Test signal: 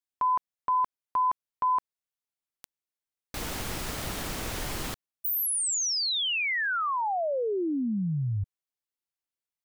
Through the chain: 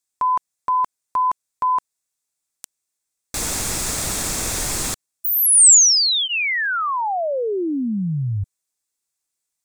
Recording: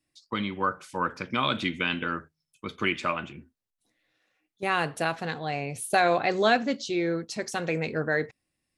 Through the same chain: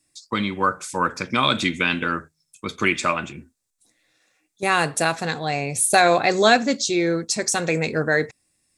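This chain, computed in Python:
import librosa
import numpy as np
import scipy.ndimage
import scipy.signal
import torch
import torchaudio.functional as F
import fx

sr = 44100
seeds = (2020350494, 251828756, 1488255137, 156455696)

y = fx.peak_eq(x, sr, hz=7800.0, db=13.5, octaves=1.1)
y = fx.notch(y, sr, hz=3000.0, q=10.0)
y = F.gain(torch.from_numpy(y), 6.0).numpy()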